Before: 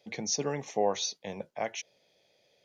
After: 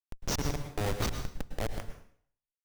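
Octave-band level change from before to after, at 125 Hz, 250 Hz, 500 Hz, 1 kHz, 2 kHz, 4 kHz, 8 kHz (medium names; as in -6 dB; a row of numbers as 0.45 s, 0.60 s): +8.5 dB, 0.0 dB, -6.5 dB, -5.0 dB, 0.0 dB, -4.0 dB, no reading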